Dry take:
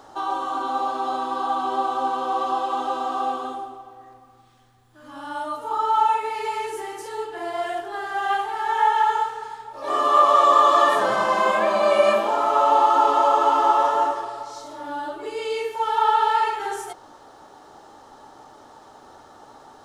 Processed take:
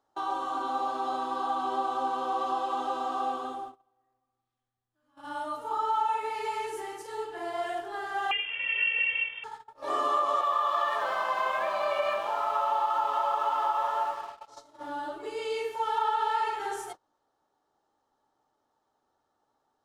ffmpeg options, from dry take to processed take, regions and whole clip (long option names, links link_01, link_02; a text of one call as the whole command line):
ffmpeg -i in.wav -filter_complex "[0:a]asettb=1/sr,asplit=3[link_01][link_02][link_03];[link_01]atrim=end=8.314[link_04];[link_02]atrim=start=8.31:end=9.44,asetpts=PTS-STARTPTS,afade=type=in:duration=0.004:curve=qsin,afade=type=out:start_time=1.126:duration=0.004:curve=qsin,aeval=exprs='sgn(val(0))*max(abs(val(0))-0.0075,0)':channel_layout=same,lowpass=frequency=3100:width_type=q:width=0.5098,lowpass=frequency=3100:width_type=q:width=0.6013,lowpass=frequency=3100:width_type=q:width=0.9,lowpass=frequency=3100:width_type=q:width=2.563,afreqshift=-3600[link_05];[link_03]atrim=start=9.436[link_06];[link_04][link_05]acrossfade=duration=0.004:curve1=hsin:curve2=qsin[link_07];[link_07][link_06]acrossfade=duration=0.004:curve1=qsin:curve2=hsin,asettb=1/sr,asplit=3[link_08][link_09][link_10];[link_08]atrim=end=10.414[link_11];[link_09]atrim=start=10.41:end=14.48,asetpts=PTS-STARTPTS,afade=type=in:duration=0.004:curve=qsin,afade=type=out:start_time=4.066:duration=0.004:curve=qsin,acrossover=split=560 4600:gain=0.112 1 0.2[link_12][link_13][link_14];[link_12][link_13][link_14]amix=inputs=3:normalize=0,aeval=exprs='sgn(val(0))*max(abs(val(0))-0.00668,0)':channel_layout=same[link_15];[link_10]atrim=start=14.476[link_16];[link_11][link_15]acrossfade=duration=0.004:curve1=hsin:curve2=qsin[link_17];[link_17][link_16]acrossfade=duration=0.004:curve1=qsin:curve2=hsin,agate=range=-24dB:threshold=-35dB:ratio=16:detection=peak,acompressor=threshold=-18dB:ratio=6,volume=-5.5dB" out.wav